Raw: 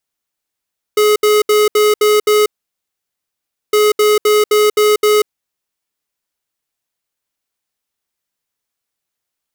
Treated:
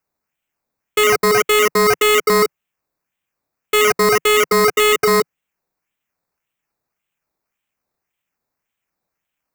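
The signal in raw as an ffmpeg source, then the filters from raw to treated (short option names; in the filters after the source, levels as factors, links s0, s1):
-f lavfi -i "aevalsrc='0.299*(2*lt(mod(422*t,1),0.5)-1)*clip(min(mod(mod(t,2.76),0.26),0.19-mod(mod(t,2.76),0.26))/0.005,0,1)*lt(mod(t,2.76),1.56)':d=5.52:s=44100"
-filter_complex "[0:a]equalizer=f=160:t=o:w=0.67:g=6,equalizer=f=400:t=o:w=0.67:g=-5,equalizer=f=2500:t=o:w=0.67:g=9,equalizer=f=10000:t=o:w=0.67:g=-11,acrossover=split=140|900|5500[s0][s1][s2][s3];[s2]acrusher=samples=11:mix=1:aa=0.000001:lfo=1:lforange=6.6:lforate=1.8[s4];[s0][s1][s4][s3]amix=inputs=4:normalize=0"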